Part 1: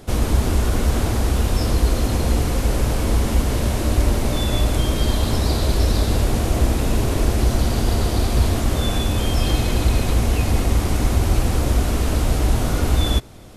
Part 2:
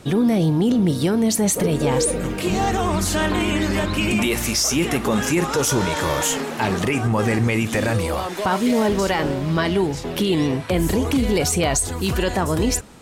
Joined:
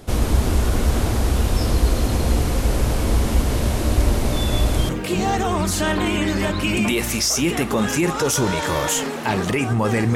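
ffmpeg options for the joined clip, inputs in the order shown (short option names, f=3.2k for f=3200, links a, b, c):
-filter_complex "[0:a]apad=whole_dur=10.15,atrim=end=10.15,atrim=end=4.892[a];[1:a]atrim=start=2.228:end=7.49[b];[a][b]acrossfade=d=0.004:c1=hsin:c2=hsin"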